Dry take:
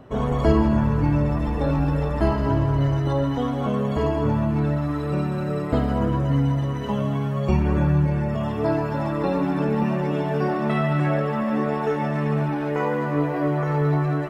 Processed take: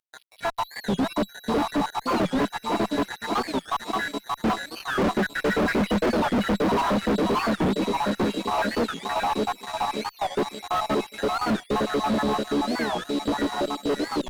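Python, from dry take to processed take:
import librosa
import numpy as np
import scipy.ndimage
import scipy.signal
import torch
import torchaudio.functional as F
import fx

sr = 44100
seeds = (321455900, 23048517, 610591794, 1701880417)

p1 = fx.spec_dropout(x, sr, seeds[0], share_pct=85)
p2 = fx.doppler_pass(p1, sr, speed_mps=8, closest_m=3.8, pass_at_s=5.59)
p3 = scipy.signal.sosfilt(scipy.signal.ellip(4, 1.0, 40, 200.0, 'highpass', fs=sr, output='sos'), p2)
p4 = fx.rider(p3, sr, range_db=4, speed_s=0.5)
p5 = p3 + F.gain(torch.from_numpy(p4), 1.0).numpy()
p6 = p5 + 10.0 ** (-49.0 / 20.0) * np.sin(2.0 * np.pi * 3900.0 * np.arange(len(p5)) / sr)
p7 = fx.air_absorb(p6, sr, metres=240.0)
p8 = p7 + fx.echo_feedback(p7, sr, ms=578, feedback_pct=45, wet_db=-5.5, dry=0)
p9 = fx.fuzz(p8, sr, gain_db=49.0, gate_db=-55.0)
p10 = fx.high_shelf(p9, sr, hz=2900.0, db=-10.0)
p11 = fx.record_warp(p10, sr, rpm=45.0, depth_cents=250.0)
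y = F.gain(torch.from_numpy(p11), -6.5).numpy()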